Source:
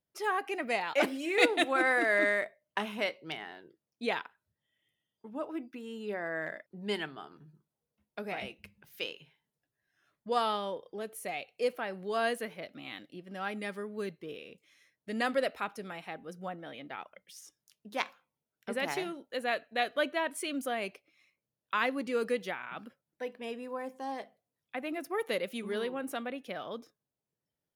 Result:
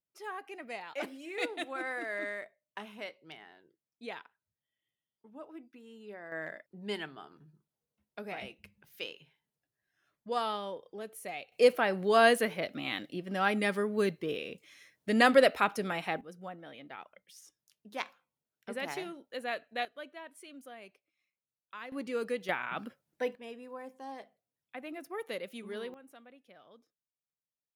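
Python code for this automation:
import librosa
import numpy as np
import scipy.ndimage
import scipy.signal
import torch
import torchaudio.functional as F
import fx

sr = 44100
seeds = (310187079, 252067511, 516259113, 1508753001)

y = fx.gain(x, sr, db=fx.steps((0.0, -10.0), (6.32, -3.0), (11.52, 8.0), (16.21, -4.0), (19.85, -15.0), (21.92, -3.0), (22.49, 5.0), (23.35, -6.0), (25.94, -18.0)))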